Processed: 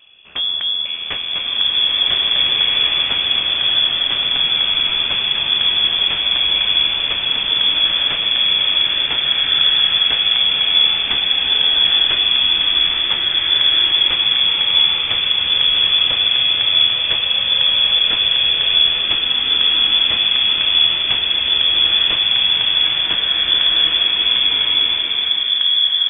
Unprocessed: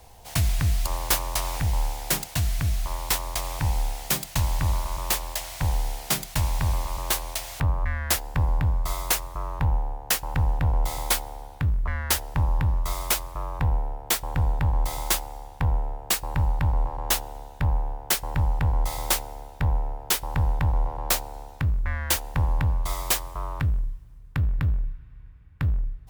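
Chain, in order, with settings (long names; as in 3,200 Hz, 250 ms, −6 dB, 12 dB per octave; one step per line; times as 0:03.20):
voice inversion scrambler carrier 3,400 Hz
slow-attack reverb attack 1,740 ms, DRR −7.5 dB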